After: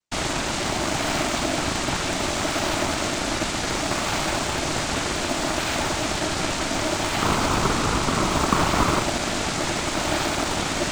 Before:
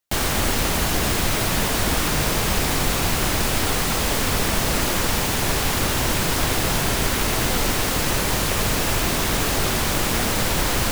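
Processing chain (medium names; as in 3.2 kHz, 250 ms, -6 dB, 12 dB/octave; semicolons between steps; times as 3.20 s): 7.19–9.02 s: peaking EQ 550 Hz +12 dB 0.6 oct; noise-vocoded speech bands 6; ring modulator 470 Hz; in parallel at -10 dB: decimation with a swept rate 22×, swing 160% 0.66 Hz; on the sum: trim +1 dB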